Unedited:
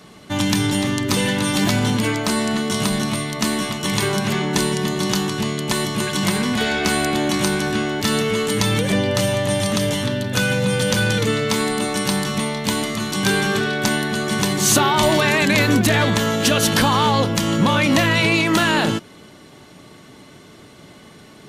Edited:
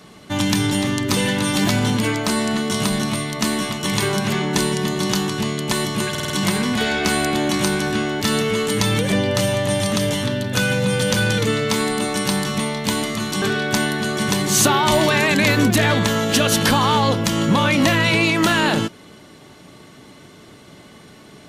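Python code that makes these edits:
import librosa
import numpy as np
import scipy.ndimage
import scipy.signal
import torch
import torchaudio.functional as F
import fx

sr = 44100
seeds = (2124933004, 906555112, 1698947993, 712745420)

y = fx.edit(x, sr, fx.stutter(start_s=6.1, slice_s=0.05, count=5),
    fx.cut(start_s=13.22, length_s=0.31), tone=tone)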